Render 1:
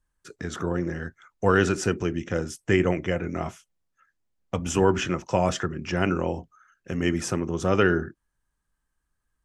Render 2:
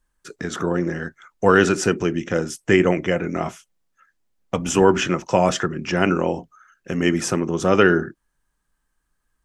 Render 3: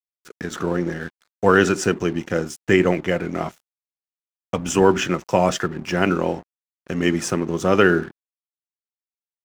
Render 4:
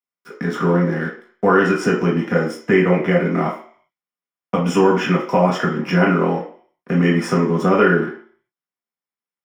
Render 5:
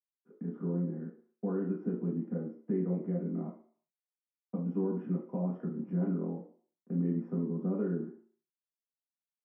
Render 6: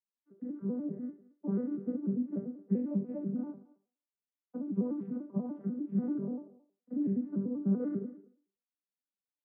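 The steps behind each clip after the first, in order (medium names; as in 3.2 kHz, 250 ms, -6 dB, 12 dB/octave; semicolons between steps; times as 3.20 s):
peaking EQ 83 Hz -12 dB 0.71 oct; trim +6 dB
crossover distortion -40.5 dBFS
compression 2.5:1, threshold -19 dBFS, peak gain reduction 7 dB; reverberation RT60 0.50 s, pre-delay 3 ms, DRR -3.5 dB; trim -6.5 dB
ladder band-pass 240 Hz, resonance 45%; trim -6 dB
vocoder on a broken chord major triad, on G3, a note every 98 ms; speakerphone echo 220 ms, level -19 dB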